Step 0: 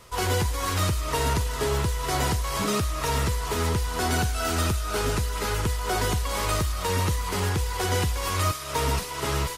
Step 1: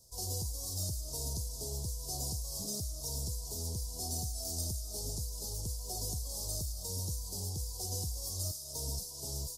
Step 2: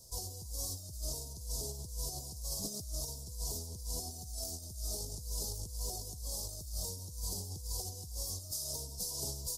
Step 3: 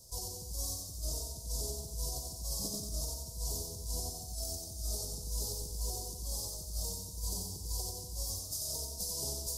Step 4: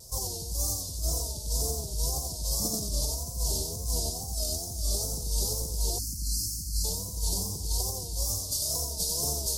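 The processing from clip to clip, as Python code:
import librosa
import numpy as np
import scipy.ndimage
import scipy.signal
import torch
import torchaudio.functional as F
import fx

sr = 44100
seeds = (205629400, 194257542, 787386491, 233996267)

y1 = scipy.signal.sosfilt(scipy.signal.cheby1(3, 1.0, [690.0, 5000.0], 'bandstop', fs=sr, output='sos'), x)
y1 = fx.tone_stack(y1, sr, knobs='5-5-5')
y1 = y1 * 10.0 ** (2.0 / 20.0)
y2 = fx.over_compress(y1, sr, threshold_db=-41.0, ratio=-0.5)
y2 = y2 * 10.0 ** (1.5 / 20.0)
y3 = fx.echo_feedback(y2, sr, ms=91, feedback_pct=47, wet_db=-4)
y4 = fx.wow_flutter(y3, sr, seeds[0], rate_hz=2.1, depth_cents=120.0)
y4 = fx.spec_erase(y4, sr, start_s=5.99, length_s=0.85, low_hz=340.0, high_hz=4100.0)
y4 = y4 * 10.0 ** (8.0 / 20.0)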